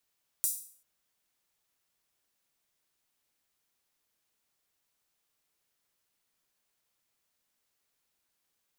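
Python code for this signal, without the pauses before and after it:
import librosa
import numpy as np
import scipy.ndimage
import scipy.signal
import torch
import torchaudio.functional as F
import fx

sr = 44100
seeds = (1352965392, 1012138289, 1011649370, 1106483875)

y = fx.drum_hat_open(sr, length_s=0.39, from_hz=8400.0, decay_s=0.5)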